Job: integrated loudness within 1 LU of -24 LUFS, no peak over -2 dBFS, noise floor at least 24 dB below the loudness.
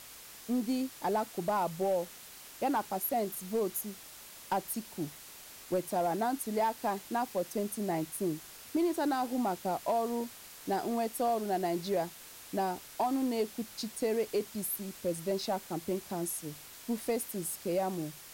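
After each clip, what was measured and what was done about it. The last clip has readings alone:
clipped 0.4%; flat tops at -23.5 dBFS; noise floor -51 dBFS; noise floor target -58 dBFS; loudness -34.0 LUFS; peak -23.5 dBFS; loudness target -24.0 LUFS
-> clip repair -23.5 dBFS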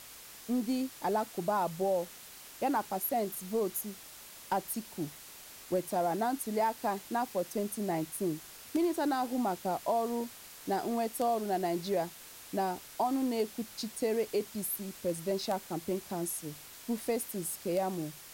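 clipped 0.0%; noise floor -51 dBFS; noise floor target -58 dBFS
-> denoiser 7 dB, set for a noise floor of -51 dBFS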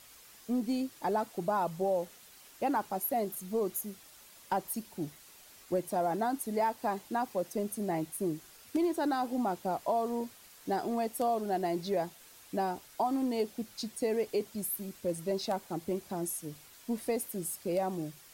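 noise floor -56 dBFS; noise floor target -58 dBFS
-> denoiser 6 dB, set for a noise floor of -56 dBFS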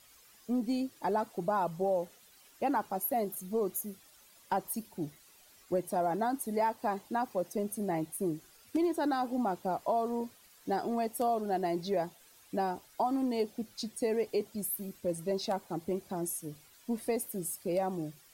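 noise floor -60 dBFS; loudness -34.0 LUFS; peak -17.5 dBFS; loudness target -24.0 LUFS
-> gain +10 dB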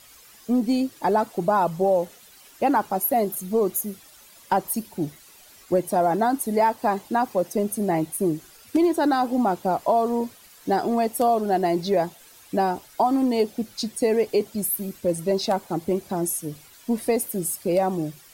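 loudness -24.0 LUFS; peak -7.5 dBFS; noise floor -50 dBFS

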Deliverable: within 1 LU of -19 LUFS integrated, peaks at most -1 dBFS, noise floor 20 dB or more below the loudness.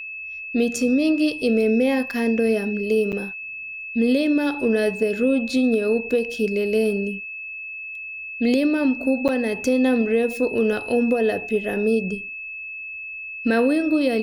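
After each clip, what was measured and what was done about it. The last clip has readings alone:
dropouts 2; longest dropout 8.0 ms; steady tone 2600 Hz; tone level -31 dBFS; loudness -22.0 LUFS; peak -8.5 dBFS; loudness target -19.0 LUFS
-> interpolate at 3.12/9.28, 8 ms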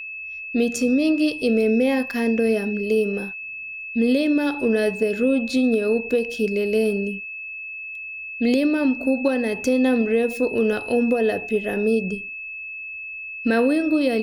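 dropouts 0; steady tone 2600 Hz; tone level -31 dBFS
-> notch 2600 Hz, Q 30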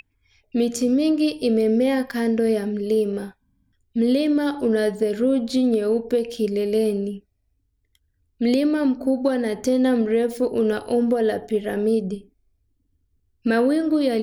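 steady tone none; loudness -21.5 LUFS; peak -7.5 dBFS; loudness target -19.0 LUFS
-> gain +2.5 dB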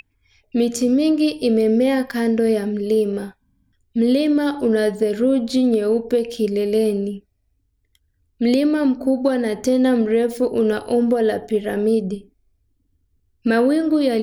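loudness -19.0 LUFS; peak -5.0 dBFS; noise floor -67 dBFS

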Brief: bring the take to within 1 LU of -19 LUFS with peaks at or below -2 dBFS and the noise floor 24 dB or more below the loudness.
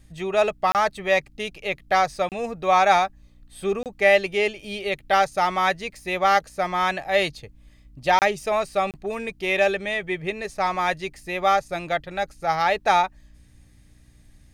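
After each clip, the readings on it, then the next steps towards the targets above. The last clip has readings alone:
dropouts 5; longest dropout 28 ms; hum 60 Hz; harmonics up to 300 Hz; hum level -56 dBFS; loudness -23.0 LUFS; peak -4.5 dBFS; loudness target -19.0 LUFS
-> interpolate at 0.72/2.29/3.83/8.19/8.91, 28 ms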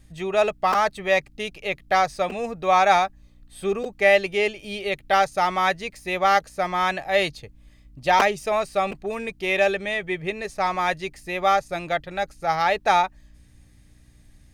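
dropouts 0; hum 60 Hz; harmonics up to 300 Hz; hum level -56 dBFS
-> de-hum 60 Hz, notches 5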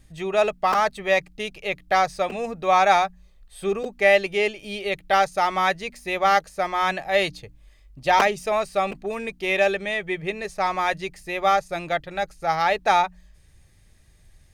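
hum none; loudness -23.0 LUFS; peak -4.0 dBFS; loudness target -19.0 LUFS
-> gain +4 dB; limiter -2 dBFS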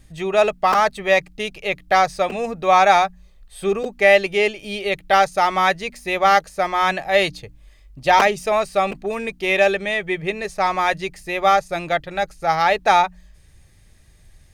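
loudness -19.0 LUFS; peak -2.0 dBFS; noise floor -51 dBFS

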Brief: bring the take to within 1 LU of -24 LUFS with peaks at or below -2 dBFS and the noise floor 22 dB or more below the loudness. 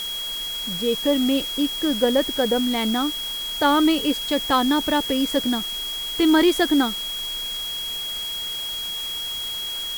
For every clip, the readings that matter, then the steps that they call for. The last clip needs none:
steady tone 3300 Hz; tone level -27 dBFS; noise floor -29 dBFS; noise floor target -44 dBFS; loudness -22.0 LUFS; peak -6.0 dBFS; loudness target -24.0 LUFS
-> notch 3300 Hz, Q 30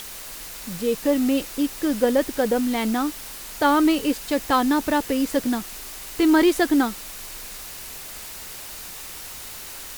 steady tone none; noise floor -37 dBFS; noise floor target -44 dBFS
-> denoiser 7 dB, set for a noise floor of -37 dBFS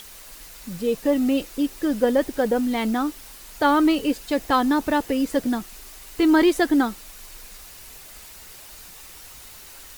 noise floor -43 dBFS; noise floor target -44 dBFS
-> denoiser 6 dB, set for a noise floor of -43 dBFS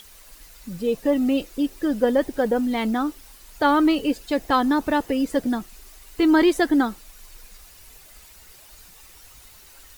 noise floor -48 dBFS; loudness -22.0 LUFS; peak -7.0 dBFS; loudness target -24.0 LUFS
-> gain -2 dB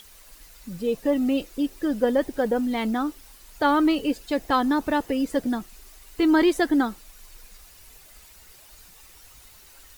loudness -24.0 LUFS; peak -9.0 dBFS; noise floor -50 dBFS

